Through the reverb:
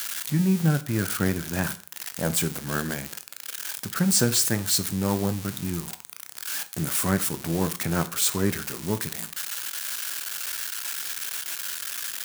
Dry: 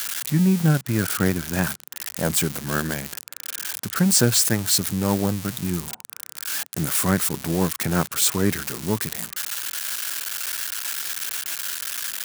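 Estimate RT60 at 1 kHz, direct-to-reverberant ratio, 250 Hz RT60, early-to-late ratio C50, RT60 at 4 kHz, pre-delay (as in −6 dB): 0.40 s, 11.5 dB, 0.35 s, 17.0 dB, 0.40 s, 15 ms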